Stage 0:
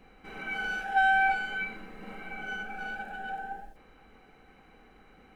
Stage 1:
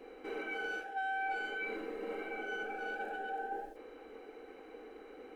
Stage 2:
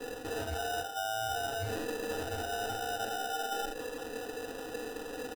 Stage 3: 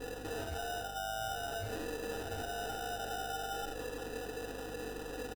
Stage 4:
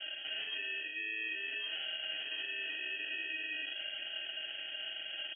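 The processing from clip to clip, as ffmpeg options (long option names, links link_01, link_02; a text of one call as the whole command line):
ffmpeg -i in.wav -af "equalizer=frequency=470:width_type=o:width=0.55:gain=11,areverse,acompressor=threshold=-38dB:ratio=4,areverse,lowshelf=frequency=220:width_type=q:width=3:gain=-11" out.wav
ffmpeg -i in.wav -af "aecho=1:1:4:0.89,areverse,acompressor=threshold=-41dB:ratio=6,areverse,acrusher=samples=20:mix=1:aa=0.000001,volume=8dB" out.wav
ffmpeg -i in.wav -filter_complex "[0:a]alimiter=level_in=7dB:limit=-24dB:level=0:latency=1,volume=-7dB,aeval=exprs='val(0)+0.00355*(sin(2*PI*50*n/s)+sin(2*PI*2*50*n/s)/2+sin(2*PI*3*50*n/s)/3+sin(2*PI*4*50*n/s)/4+sin(2*PI*5*50*n/s)/5)':channel_layout=same,asplit=4[link_01][link_02][link_03][link_04];[link_02]adelay=102,afreqshift=-74,volume=-14.5dB[link_05];[link_03]adelay=204,afreqshift=-148,volume=-23.9dB[link_06];[link_04]adelay=306,afreqshift=-222,volume=-33.2dB[link_07];[link_01][link_05][link_06][link_07]amix=inputs=4:normalize=0,volume=-2dB" out.wav
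ffmpeg -i in.wav -af "lowpass=frequency=2800:width_type=q:width=0.5098,lowpass=frequency=2800:width_type=q:width=0.6013,lowpass=frequency=2800:width_type=q:width=0.9,lowpass=frequency=2800:width_type=q:width=2.563,afreqshift=-3300" out.wav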